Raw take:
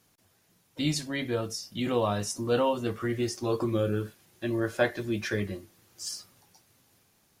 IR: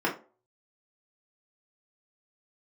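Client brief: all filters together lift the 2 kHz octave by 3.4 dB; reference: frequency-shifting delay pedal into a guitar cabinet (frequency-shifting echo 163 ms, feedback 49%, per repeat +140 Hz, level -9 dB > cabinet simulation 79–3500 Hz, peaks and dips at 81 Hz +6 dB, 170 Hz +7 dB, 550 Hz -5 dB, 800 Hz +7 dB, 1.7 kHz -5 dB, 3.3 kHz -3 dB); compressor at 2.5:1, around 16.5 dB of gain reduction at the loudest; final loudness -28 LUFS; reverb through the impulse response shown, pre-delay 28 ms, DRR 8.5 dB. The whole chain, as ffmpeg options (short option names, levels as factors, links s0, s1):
-filter_complex "[0:a]equalizer=f=2000:t=o:g=8,acompressor=threshold=0.00708:ratio=2.5,asplit=2[s0][s1];[1:a]atrim=start_sample=2205,adelay=28[s2];[s1][s2]afir=irnorm=-1:irlink=0,volume=0.1[s3];[s0][s3]amix=inputs=2:normalize=0,asplit=7[s4][s5][s6][s7][s8][s9][s10];[s5]adelay=163,afreqshift=140,volume=0.355[s11];[s6]adelay=326,afreqshift=280,volume=0.174[s12];[s7]adelay=489,afreqshift=420,volume=0.0851[s13];[s8]adelay=652,afreqshift=560,volume=0.0417[s14];[s9]adelay=815,afreqshift=700,volume=0.0204[s15];[s10]adelay=978,afreqshift=840,volume=0.01[s16];[s4][s11][s12][s13][s14][s15][s16]amix=inputs=7:normalize=0,highpass=79,equalizer=f=81:t=q:w=4:g=6,equalizer=f=170:t=q:w=4:g=7,equalizer=f=550:t=q:w=4:g=-5,equalizer=f=800:t=q:w=4:g=7,equalizer=f=1700:t=q:w=4:g=-5,equalizer=f=3300:t=q:w=4:g=-3,lowpass=f=3500:w=0.5412,lowpass=f=3500:w=1.3066,volume=4.22"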